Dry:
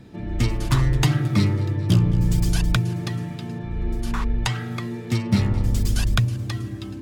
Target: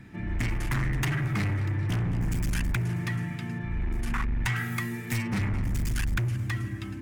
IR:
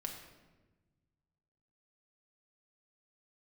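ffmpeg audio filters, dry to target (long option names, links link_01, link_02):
-filter_complex "[0:a]asettb=1/sr,asplit=3[link_01][link_02][link_03];[link_01]atrim=end=4.564[link_04];[link_02]atrim=start=4.56:end=5.28,asetpts=PTS-STARTPTS,afade=type=in:duration=0.004:curve=qsin,afade=type=out:start_time=0.716:duration=0.004:curve=qsin,aemphasis=mode=production:type=50fm[link_05];[link_03]atrim=start=5.276[link_06];[link_04][link_05]acrossfade=duration=0.004:curve1=hsin:curve2=qsin[link_07];[link_07][link_06]acrossfade=duration=0.004:curve1=qsin:curve2=hsin,asoftclip=type=hard:threshold=-23dB,equalizer=frequency=500:width_type=o:width=1:gain=-10,equalizer=frequency=2000:width_type=o:width=1:gain=10,equalizer=frequency=4000:width_type=o:width=1:gain=-8,volume=-1.5dB"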